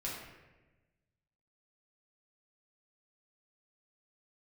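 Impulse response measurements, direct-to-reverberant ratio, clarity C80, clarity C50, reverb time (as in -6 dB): -6.0 dB, 4.0 dB, 1.5 dB, 1.2 s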